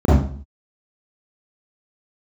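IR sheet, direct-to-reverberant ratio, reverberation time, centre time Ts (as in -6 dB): -10.5 dB, 0.50 s, 64 ms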